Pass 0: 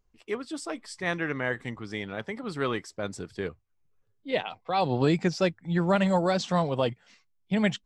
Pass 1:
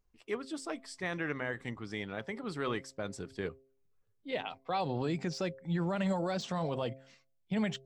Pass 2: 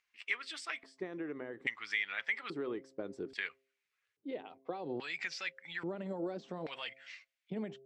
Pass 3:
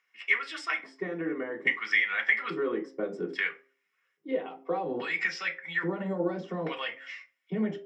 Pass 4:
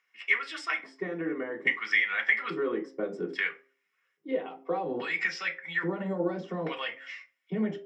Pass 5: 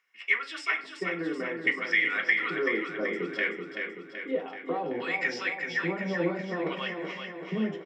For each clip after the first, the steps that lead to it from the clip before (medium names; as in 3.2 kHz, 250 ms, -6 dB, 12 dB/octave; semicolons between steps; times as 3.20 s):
de-hum 133.4 Hz, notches 5; de-esser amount 85%; peak limiter -20 dBFS, peak gain reduction 8.5 dB; trim -4 dB
tilt shelf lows -7 dB, about 1.4 kHz; compression, threshold -40 dBFS, peak gain reduction 9 dB; LFO band-pass square 0.6 Hz 350–2100 Hz; trim +13 dB
reverberation RT60 0.30 s, pre-delay 3 ms, DRR -2 dB
no audible change
feedback delay 381 ms, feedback 58%, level -6 dB